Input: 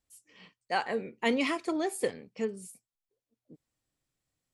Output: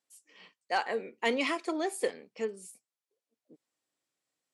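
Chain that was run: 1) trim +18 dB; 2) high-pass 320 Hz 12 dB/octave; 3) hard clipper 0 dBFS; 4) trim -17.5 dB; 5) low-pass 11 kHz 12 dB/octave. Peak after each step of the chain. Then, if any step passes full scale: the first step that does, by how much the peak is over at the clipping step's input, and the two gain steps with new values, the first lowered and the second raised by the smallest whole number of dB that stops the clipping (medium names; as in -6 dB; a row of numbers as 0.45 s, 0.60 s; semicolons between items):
+3.5 dBFS, +4.0 dBFS, 0.0 dBFS, -17.5 dBFS, -17.5 dBFS; step 1, 4.0 dB; step 1 +14 dB, step 4 -13.5 dB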